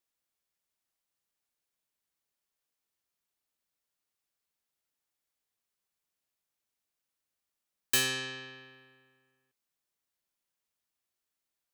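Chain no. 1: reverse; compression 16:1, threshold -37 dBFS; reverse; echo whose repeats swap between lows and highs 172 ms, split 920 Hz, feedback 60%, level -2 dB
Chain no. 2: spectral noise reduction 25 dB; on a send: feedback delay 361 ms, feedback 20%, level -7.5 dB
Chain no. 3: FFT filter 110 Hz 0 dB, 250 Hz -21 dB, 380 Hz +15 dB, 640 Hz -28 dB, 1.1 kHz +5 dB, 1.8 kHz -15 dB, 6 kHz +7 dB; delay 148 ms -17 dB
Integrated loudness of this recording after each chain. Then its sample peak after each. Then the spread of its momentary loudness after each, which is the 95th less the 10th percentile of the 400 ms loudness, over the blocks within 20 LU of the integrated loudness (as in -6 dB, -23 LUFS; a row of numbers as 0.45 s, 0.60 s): -40.5 LUFS, -30.5 LUFS, -25.5 LUFS; -29.0 dBFS, -13.5 dBFS, -7.0 dBFS; 18 LU, 17 LU, 17 LU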